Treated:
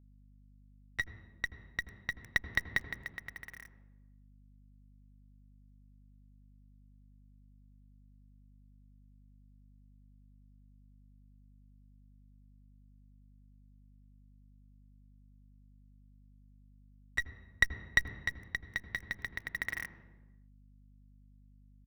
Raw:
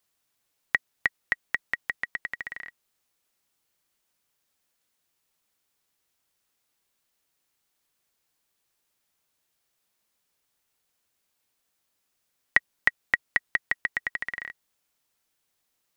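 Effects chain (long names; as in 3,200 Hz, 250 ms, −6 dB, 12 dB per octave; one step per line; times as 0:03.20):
high-pass filter 130 Hz 6 dB per octave
far-end echo of a speakerphone 330 ms, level −29 dB
bit reduction 7 bits
harmonic generator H 3 −21 dB, 4 −18 dB, 7 −25 dB, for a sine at −3 dBFS
reversed playback
downward compressor 6 to 1, threshold −32 dBFS, peak gain reduction 17 dB
reversed playback
dynamic equaliser 2,100 Hz, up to +3 dB, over −46 dBFS, Q 6.1
square-wave tremolo 0.63 Hz, depth 60%, duty 30%
tempo change 0.73×
on a send at −10.5 dB: high-frequency loss of the air 230 metres + convolution reverb, pre-delay 77 ms
on the sum: mains hum 50 Hz, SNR 16 dB
level +7 dB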